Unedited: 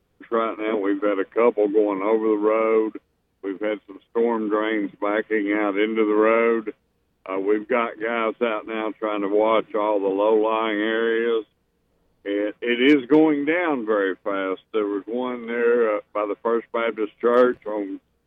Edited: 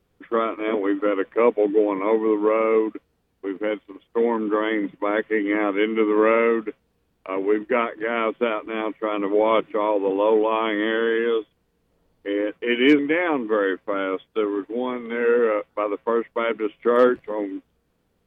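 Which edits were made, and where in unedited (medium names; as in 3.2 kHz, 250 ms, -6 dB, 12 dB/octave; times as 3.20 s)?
12.99–13.37 s: delete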